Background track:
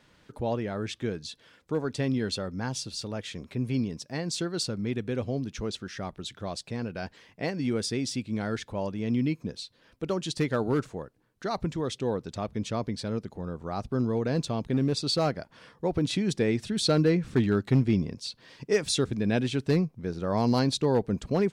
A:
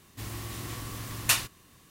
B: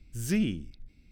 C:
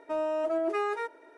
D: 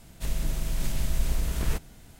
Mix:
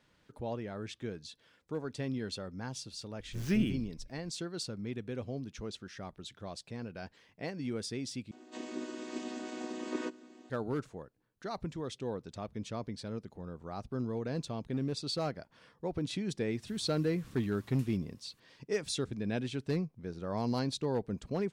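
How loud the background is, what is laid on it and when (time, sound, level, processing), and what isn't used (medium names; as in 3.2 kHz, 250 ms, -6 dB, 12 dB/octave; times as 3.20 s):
background track -8.5 dB
3.19 s: add B -2.5 dB + median filter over 5 samples
8.31 s: replace with D -1.5 dB + vocoder on a held chord major triad, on B3
16.50 s: add A -14.5 dB + compression 4:1, threshold -43 dBFS
not used: C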